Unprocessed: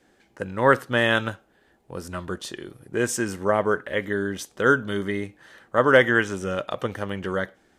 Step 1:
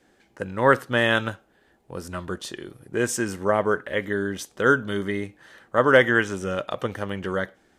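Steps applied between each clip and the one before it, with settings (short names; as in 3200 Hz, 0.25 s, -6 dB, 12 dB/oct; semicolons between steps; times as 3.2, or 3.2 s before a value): nothing audible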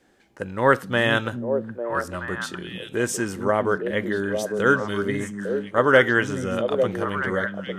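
delay with a stepping band-pass 0.425 s, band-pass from 180 Hz, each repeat 1.4 oct, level -0.5 dB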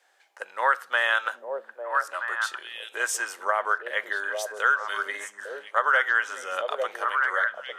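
HPF 650 Hz 24 dB/oct; dynamic EQ 1400 Hz, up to +7 dB, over -35 dBFS, Q 1.7; compressor 3:1, threshold -20 dBFS, peak gain reduction 9.5 dB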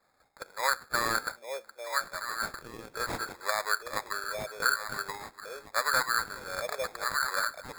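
sample-and-hold 15×; gain -5.5 dB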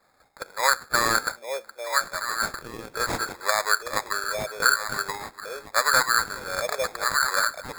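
dynamic EQ 6600 Hz, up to +4 dB, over -47 dBFS, Q 1.8; gain +6.5 dB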